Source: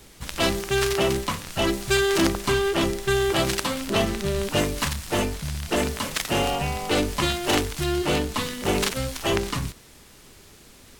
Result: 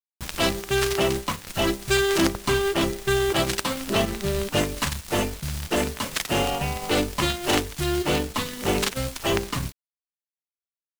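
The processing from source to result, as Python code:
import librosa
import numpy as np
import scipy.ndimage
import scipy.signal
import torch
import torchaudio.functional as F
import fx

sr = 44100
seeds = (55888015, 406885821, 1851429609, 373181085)

y = fx.quant_dither(x, sr, seeds[0], bits=6, dither='none')
y = fx.transient(y, sr, attack_db=0, sustain_db=-8)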